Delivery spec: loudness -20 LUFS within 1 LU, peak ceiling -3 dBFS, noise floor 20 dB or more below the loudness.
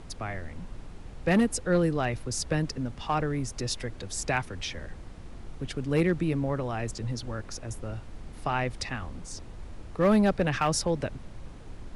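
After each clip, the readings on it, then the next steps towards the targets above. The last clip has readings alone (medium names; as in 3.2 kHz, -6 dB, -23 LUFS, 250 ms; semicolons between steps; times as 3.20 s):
clipped samples 0.4%; clipping level -16.5 dBFS; noise floor -45 dBFS; noise floor target -50 dBFS; loudness -29.5 LUFS; peak level -16.5 dBFS; loudness target -20.0 LUFS
-> clip repair -16.5 dBFS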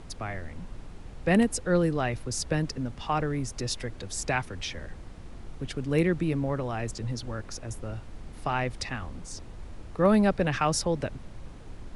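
clipped samples 0.0%; noise floor -45 dBFS; noise floor target -49 dBFS
-> noise print and reduce 6 dB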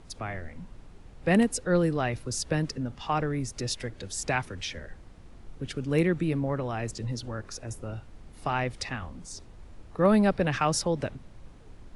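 noise floor -51 dBFS; loudness -29.0 LUFS; peak level -9.0 dBFS; loudness target -20.0 LUFS
-> trim +9 dB; peak limiter -3 dBFS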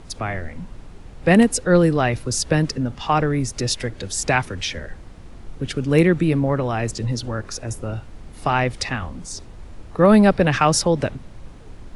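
loudness -20.0 LUFS; peak level -3.0 dBFS; noise floor -42 dBFS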